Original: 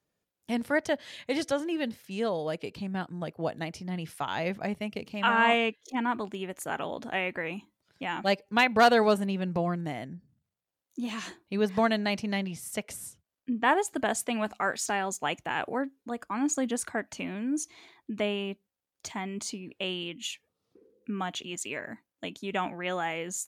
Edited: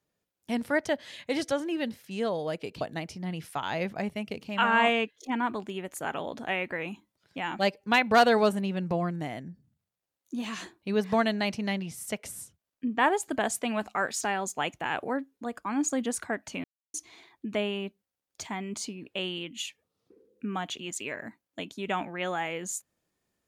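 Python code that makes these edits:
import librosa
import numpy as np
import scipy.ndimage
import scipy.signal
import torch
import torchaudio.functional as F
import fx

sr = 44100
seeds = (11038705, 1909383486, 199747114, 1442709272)

y = fx.edit(x, sr, fx.cut(start_s=2.81, length_s=0.65),
    fx.silence(start_s=17.29, length_s=0.3), tone=tone)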